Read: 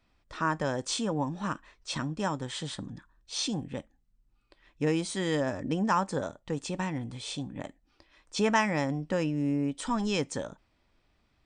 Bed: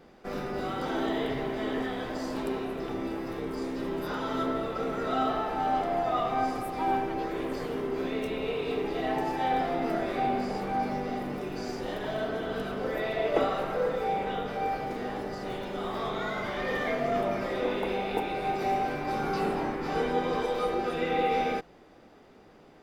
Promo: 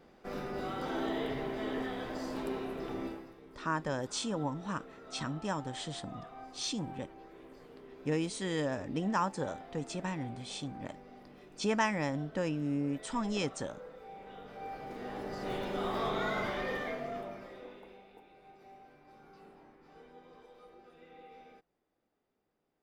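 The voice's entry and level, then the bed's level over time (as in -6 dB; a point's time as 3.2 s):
3.25 s, -4.5 dB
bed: 3.06 s -5 dB
3.36 s -20.5 dB
14.08 s -20.5 dB
15.56 s -1 dB
16.42 s -1 dB
18.17 s -27.5 dB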